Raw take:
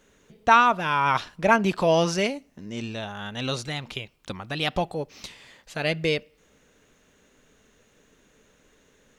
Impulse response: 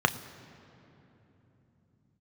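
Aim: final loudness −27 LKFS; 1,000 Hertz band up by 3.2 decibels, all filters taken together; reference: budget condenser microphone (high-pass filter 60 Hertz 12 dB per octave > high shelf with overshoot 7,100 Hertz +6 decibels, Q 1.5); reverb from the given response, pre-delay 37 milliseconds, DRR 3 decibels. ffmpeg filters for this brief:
-filter_complex "[0:a]equalizer=frequency=1000:width_type=o:gain=4,asplit=2[link_01][link_02];[1:a]atrim=start_sample=2205,adelay=37[link_03];[link_02][link_03]afir=irnorm=-1:irlink=0,volume=-16.5dB[link_04];[link_01][link_04]amix=inputs=2:normalize=0,highpass=60,highshelf=frequency=7100:width_type=q:width=1.5:gain=6,volume=-7dB"

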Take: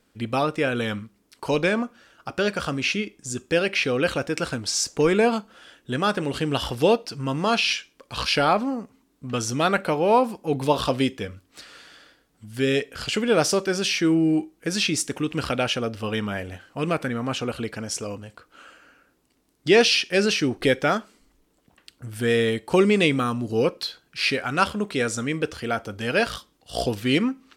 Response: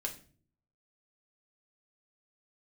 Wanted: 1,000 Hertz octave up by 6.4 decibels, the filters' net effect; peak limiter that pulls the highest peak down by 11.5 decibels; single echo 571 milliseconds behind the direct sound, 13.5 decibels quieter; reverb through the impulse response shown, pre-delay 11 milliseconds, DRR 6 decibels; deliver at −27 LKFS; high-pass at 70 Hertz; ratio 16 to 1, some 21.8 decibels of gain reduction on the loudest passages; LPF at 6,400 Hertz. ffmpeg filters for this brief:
-filter_complex "[0:a]highpass=70,lowpass=6400,equalizer=frequency=1000:width_type=o:gain=8.5,acompressor=threshold=-31dB:ratio=16,alimiter=level_in=3dB:limit=-24dB:level=0:latency=1,volume=-3dB,aecho=1:1:571:0.211,asplit=2[link_01][link_02];[1:a]atrim=start_sample=2205,adelay=11[link_03];[link_02][link_03]afir=irnorm=-1:irlink=0,volume=-6.5dB[link_04];[link_01][link_04]amix=inputs=2:normalize=0,volume=10.5dB"

